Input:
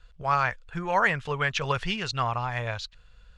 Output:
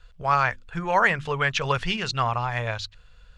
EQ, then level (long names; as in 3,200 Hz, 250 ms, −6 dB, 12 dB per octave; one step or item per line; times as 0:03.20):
mains-hum notches 50/100/150/200/250/300/350 Hz
+3.0 dB